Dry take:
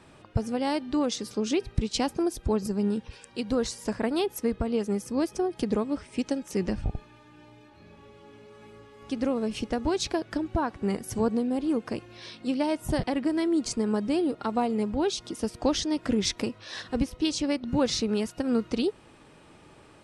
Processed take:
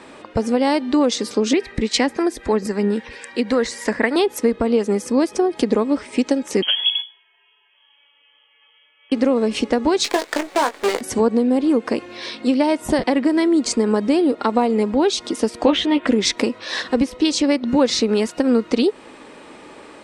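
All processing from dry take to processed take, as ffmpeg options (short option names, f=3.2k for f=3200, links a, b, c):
-filter_complex "[0:a]asettb=1/sr,asplit=3[a][b][c];[a]atrim=end=1.534[d];[b]atrim=start=1.53:end=4.16,asetpts=PTS-STARTPTS,afade=t=in:d=0.004:c=qsin,afade=t=out:st=2.626:d=0.004:c=qsin,equalizer=f=1.9k:t=o:w=0.52:g=11,acrossover=split=610[e][f];[e]aeval=exprs='val(0)*(1-0.5/2+0.5/2*cos(2*PI*3.7*n/s))':c=same[g];[f]aeval=exprs='val(0)*(1-0.5/2-0.5/2*cos(2*PI*3.7*n/s))':c=same[h];[g][h]amix=inputs=2:normalize=0[i];[c]atrim=start=4.156[j];[d][i]acrossfade=d=0.004:c1=hsin:c2=qsin[k];[k][j]acrossfade=d=0.004:c1=qsin:c2=hsin,asettb=1/sr,asplit=3[l][m][n];[l]atrim=end=6.624[o];[m]atrim=start=6.62:end=9.12,asetpts=PTS-STARTPTS,afade=t=in:d=0.004:c=qsin,afade=t=out:st=2.496:d=0.004:c=qsin,agate=range=-17dB:threshold=-43dB:ratio=16:release=100:detection=peak,bandreject=f=60:t=h:w=6,bandreject=f=120:t=h:w=6,bandreject=f=180:t=h:w=6,bandreject=f=240:t=h:w=6,bandreject=f=300:t=h:w=6,bandreject=f=360:t=h:w=6,bandreject=f=420:t=h:w=6,bandreject=f=480:t=h:w=6,bandreject=f=540:t=h:w=6,lowpass=f=2.9k:t=q:w=0.5098,lowpass=f=2.9k:t=q:w=0.6013,lowpass=f=2.9k:t=q:w=0.9,lowpass=f=2.9k:t=q:w=2.563,afreqshift=-3400[p];[n]atrim=start=9.116[q];[o][p]acrossfade=d=0.004:c1=hsin:c2=qsin[r];[r][q]acrossfade=d=0.004:c1=qsin:c2=hsin,asettb=1/sr,asplit=3[s][t][u];[s]atrim=end=10.044[v];[t]atrim=start=10.04:end=11.01,asetpts=PTS-STARTPTS,afade=t=in:d=0.004:c=qsin,afade=t=out:st=0.966:d=0.004:c=qsin,highpass=f=360:w=0.5412,highpass=f=360:w=1.3066,acrusher=bits=6:dc=4:mix=0:aa=0.000001,asplit=2[w][x];[x]adelay=20,volume=-8.5dB[y];[w][y]amix=inputs=2:normalize=0,atrim=end_sample=42777[z];[u]atrim=start=11.006[aa];[v][z]acrossfade=d=0.004:c1=hsin:c2=qsin[ab];[ab][aa]acrossfade=d=0.004:c1=qsin:c2=hsin,asettb=1/sr,asplit=3[ac][ad][ae];[ac]atrim=end=15.654[af];[ad]atrim=start=15.65:end=16.07,asetpts=PTS-STARTPTS,afade=t=in:d=0.004:c=qsin,afade=t=out:st=0.416:d=0.004:c=qsin,highshelf=f=4k:t=q:w=3:g=-9,asplit=2[ag][ah];[ah]adelay=14,volume=-4dB[ai];[ag][ai]amix=inputs=2:normalize=0,atrim=end_sample=18522[aj];[ae]atrim=start=16.066[ak];[af][aj]acrossfade=d=0.004:c1=hsin:c2=qsin[al];[al][ak]acrossfade=d=0.004:c1=qsin:c2=hsin,equalizer=f=125:t=o:w=1:g=-6,equalizer=f=250:t=o:w=1:g=12,equalizer=f=500:t=o:w=1:g=11,equalizer=f=1k:t=o:w=1:g=9,equalizer=f=2k:t=o:w=1:g=11,equalizer=f=4k:t=o:w=1:g=8,equalizer=f=8k:t=o:w=1:g=10,acompressor=threshold=-16dB:ratio=2"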